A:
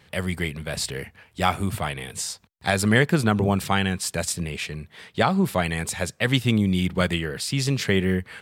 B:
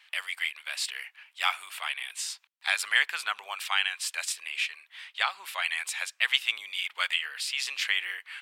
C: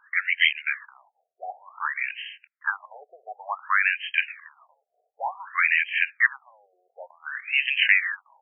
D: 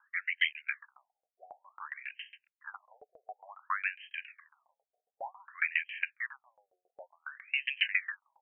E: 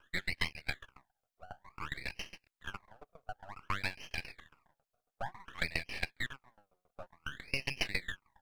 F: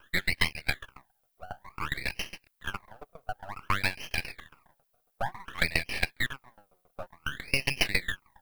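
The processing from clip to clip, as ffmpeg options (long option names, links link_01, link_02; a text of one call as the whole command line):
ffmpeg -i in.wav -af "highpass=frequency=960:width=0.5412,highpass=frequency=960:width=1.3066,equalizer=frequency=2700:width_type=o:width=1.1:gain=9.5,volume=-6dB" out.wav
ffmpeg -i in.wav -af "aemphasis=mode=production:type=75fm,acontrast=40,afftfilt=real='re*between(b*sr/1024,530*pow(2300/530,0.5+0.5*sin(2*PI*0.55*pts/sr))/1.41,530*pow(2300/530,0.5+0.5*sin(2*PI*0.55*pts/sr))*1.41)':imag='im*between(b*sr/1024,530*pow(2300/530,0.5+0.5*sin(2*PI*0.55*pts/sr))/1.41,530*pow(2300/530,0.5+0.5*sin(2*PI*0.55*pts/sr))*1.41)':win_size=1024:overlap=0.75,volume=3.5dB" out.wav
ffmpeg -i in.wav -af "aeval=exprs='val(0)*pow(10,-26*if(lt(mod(7.3*n/s,1),2*abs(7.3)/1000),1-mod(7.3*n/s,1)/(2*abs(7.3)/1000),(mod(7.3*n/s,1)-2*abs(7.3)/1000)/(1-2*abs(7.3)/1000))/20)':channel_layout=same,volume=-4dB" out.wav
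ffmpeg -i in.wav -af "acompressor=threshold=-35dB:ratio=3,aeval=exprs='max(val(0),0)':channel_layout=same,volume=6dB" out.wav
ffmpeg -i in.wav -af "aexciter=amount=3.1:drive=2.1:freq=9500,volume=8dB" out.wav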